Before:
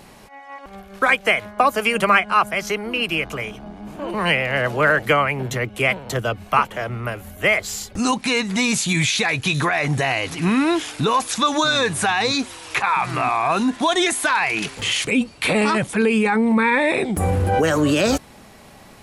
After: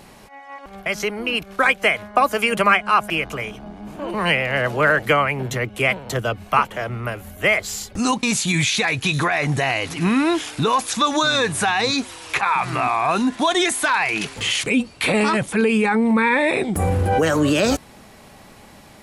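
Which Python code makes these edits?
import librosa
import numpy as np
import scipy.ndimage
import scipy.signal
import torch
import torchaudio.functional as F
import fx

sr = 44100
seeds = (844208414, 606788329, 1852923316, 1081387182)

y = fx.edit(x, sr, fx.move(start_s=2.53, length_s=0.57, to_s=0.86),
    fx.cut(start_s=8.23, length_s=0.41), tone=tone)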